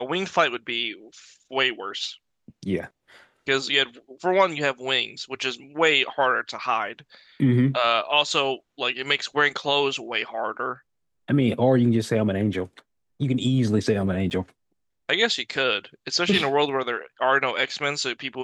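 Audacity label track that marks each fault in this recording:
14.300000	14.310000	dropout 9.5 ms

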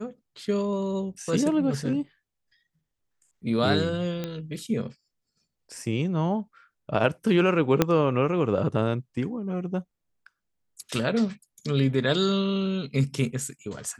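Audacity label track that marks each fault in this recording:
4.240000	4.240000	pop -17 dBFS
7.820000	7.820000	pop -5 dBFS

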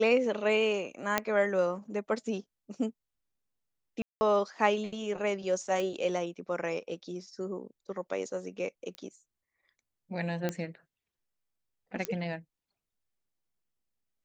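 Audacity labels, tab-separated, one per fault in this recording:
1.180000	1.180000	pop -10 dBFS
4.020000	4.210000	dropout 190 ms
5.800000	5.800000	pop -21 dBFS
8.950000	8.950000	pop -28 dBFS
10.490000	10.490000	pop -17 dBFS
12.050000	12.050000	pop -16 dBFS

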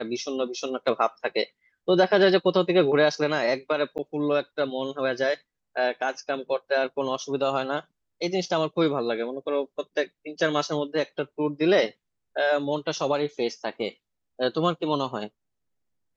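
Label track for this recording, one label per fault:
3.980000	3.990000	dropout 9.1 ms

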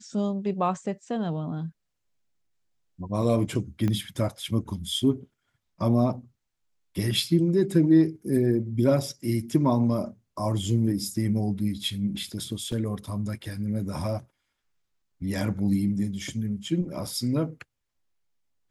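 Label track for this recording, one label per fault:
3.880000	3.880000	pop -17 dBFS
12.720000	12.720000	dropout 4 ms
17.070000	17.070000	dropout 4.1 ms

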